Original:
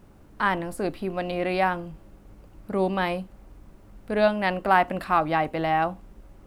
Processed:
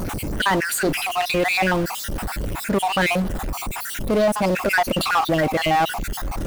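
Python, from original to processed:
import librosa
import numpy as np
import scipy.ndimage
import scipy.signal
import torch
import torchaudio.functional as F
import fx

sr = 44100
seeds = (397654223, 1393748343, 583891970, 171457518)

p1 = fx.spec_dropout(x, sr, seeds[0], share_pct=53)
p2 = fx.high_shelf(p1, sr, hz=5700.0, db=7.0)
p3 = np.where(np.abs(p2) >= 10.0 ** (-31.5 / 20.0), p2, 0.0)
p4 = p2 + (p3 * librosa.db_to_amplitude(-4.0))
p5 = fx.power_curve(p4, sr, exponent=0.5)
p6 = fx.env_flatten(p5, sr, amount_pct=50)
y = p6 * librosa.db_to_amplitude(-6.5)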